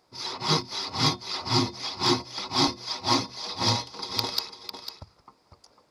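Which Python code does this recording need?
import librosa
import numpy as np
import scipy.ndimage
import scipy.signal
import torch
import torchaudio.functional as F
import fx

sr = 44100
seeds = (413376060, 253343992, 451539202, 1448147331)

y = fx.fix_interpolate(x, sr, at_s=(0.61, 2.68), length_ms=2.1)
y = fx.fix_echo_inverse(y, sr, delay_ms=500, level_db=-10.0)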